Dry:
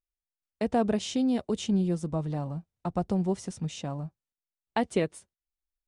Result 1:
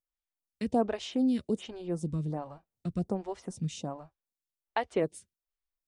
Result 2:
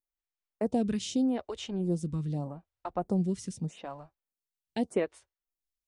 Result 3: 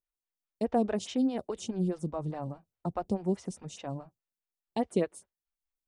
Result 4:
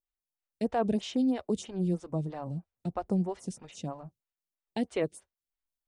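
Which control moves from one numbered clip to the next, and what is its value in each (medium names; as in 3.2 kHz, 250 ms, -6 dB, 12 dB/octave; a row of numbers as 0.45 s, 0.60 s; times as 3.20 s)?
lamp-driven phase shifter, rate: 1.3 Hz, 0.82 Hz, 4.8 Hz, 3.1 Hz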